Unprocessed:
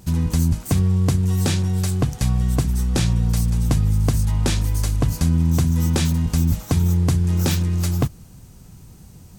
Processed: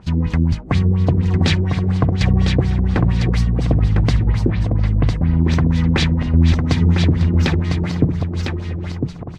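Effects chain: backward echo that repeats 625 ms, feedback 45%, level -10 dB; dynamic bell 2 kHz, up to +7 dB, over -51 dBFS, Q 2.8; LFO low-pass sine 4.2 Hz 340–4500 Hz; 4.24–5.40 s: tape spacing loss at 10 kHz 33 dB; on a send: delay 1003 ms -5.5 dB; on the sum: trim +1.5 dB

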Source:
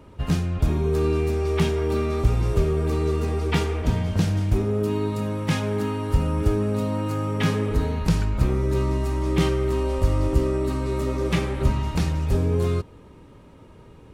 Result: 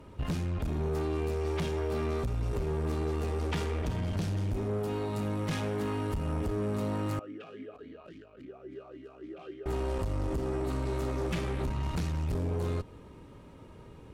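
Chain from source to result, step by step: compression 4:1, threshold -22 dBFS, peak gain reduction 8.5 dB; valve stage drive 26 dB, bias 0.45; 7.19–9.66 s: talking filter a-i 3.6 Hz; trim -1 dB

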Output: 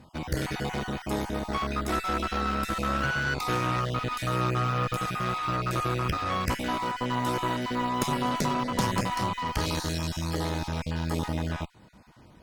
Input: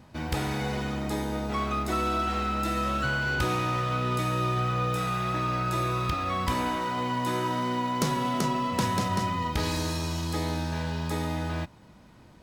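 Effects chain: random holes in the spectrogram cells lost 22%; Chebyshev shaper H 6 -17 dB, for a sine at -13 dBFS

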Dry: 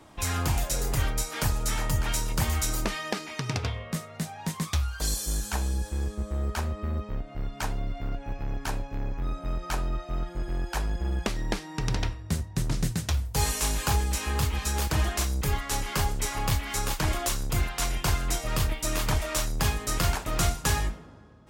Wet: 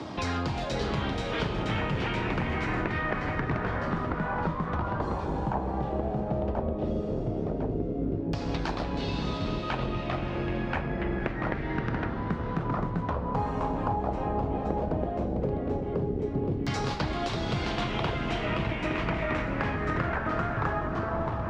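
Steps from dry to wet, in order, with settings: high-pass 210 Hz 12 dB/octave; tilt EQ -3 dB/octave; compression, threshold -28 dBFS, peak gain reduction 7 dB; ever faster or slower copies 517 ms, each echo -4 st, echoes 3; echo that smears into a reverb 582 ms, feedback 46%, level -11 dB; LFO low-pass saw down 0.12 Hz 370–5000 Hz; three bands compressed up and down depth 70%

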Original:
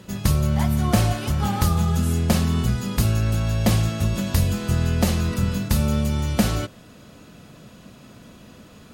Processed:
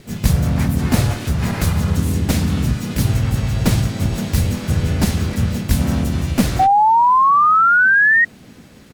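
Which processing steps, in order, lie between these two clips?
comb filter that takes the minimum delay 0.48 ms; harmony voices -3 st -3 dB, +3 st -2 dB; painted sound rise, 6.59–8.25 s, 750–1900 Hz -12 dBFS

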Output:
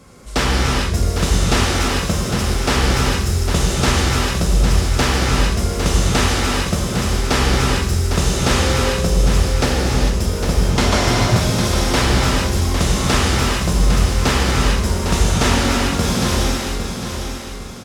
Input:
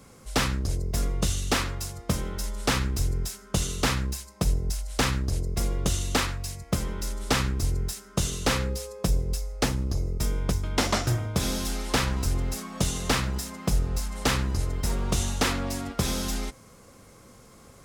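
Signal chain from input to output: treble shelf 11 kHz -10 dB; on a send: feedback delay 805 ms, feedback 38%, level -7.5 dB; on the sum: gated-style reverb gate 470 ms flat, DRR -4.5 dB; trim +5 dB

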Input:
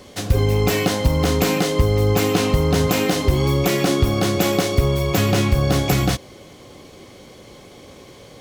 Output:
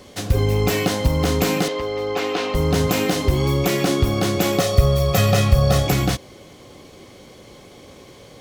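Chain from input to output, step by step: 1.68–2.55 s: three-band isolator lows -21 dB, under 320 Hz, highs -18 dB, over 5.2 kHz; 4.59–5.87 s: comb 1.6 ms, depth 79%; trim -1 dB

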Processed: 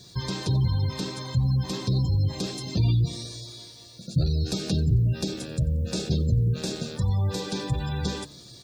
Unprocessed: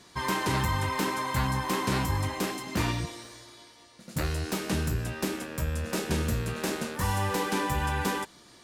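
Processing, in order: band-stop 3 kHz, Q 9.5; in parallel at +2 dB: compression, threshold -35 dBFS, peak gain reduction 11.5 dB; on the sum: de-hum 72.44 Hz, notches 9; gain riding within 3 dB 2 s; ten-band graphic EQ 125 Hz +11 dB, 250 Hz -5 dB, 1 kHz -11 dB, 2 kHz -10 dB, 4 kHz +7 dB, 16 kHz -12 dB; spectral gate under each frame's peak -30 dB strong; word length cut 12-bit, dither triangular; treble shelf 7.9 kHz +8 dB; on a send: frequency-shifting echo 90 ms, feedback 47%, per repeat +56 Hz, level -23 dB; on the sum: trim -2 dB

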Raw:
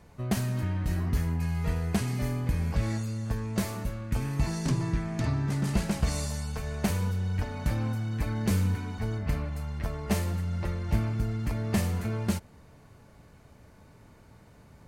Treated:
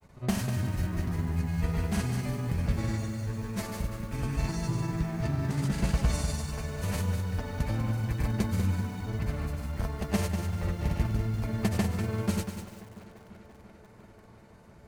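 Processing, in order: granulator, pitch spread up and down by 0 st; on a send: tape echo 341 ms, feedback 89%, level -17 dB, low-pass 4.1 kHz; on the sum: bit-crushed delay 195 ms, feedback 35%, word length 8-bit, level -8 dB

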